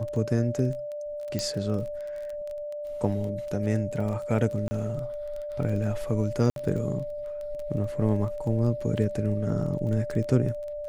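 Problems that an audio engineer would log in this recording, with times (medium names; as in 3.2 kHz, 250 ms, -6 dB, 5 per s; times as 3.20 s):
crackle 17 per s -33 dBFS
whine 590 Hz -32 dBFS
1.39 s: pop -15 dBFS
4.68–4.71 s: dropout 30 ms
6.50–6.56 s: dropout 62 ms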